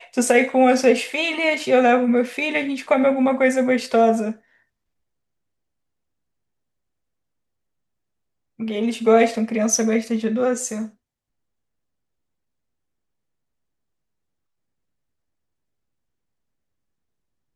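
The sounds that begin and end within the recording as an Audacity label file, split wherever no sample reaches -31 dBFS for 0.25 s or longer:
8.600000	10.860000	sound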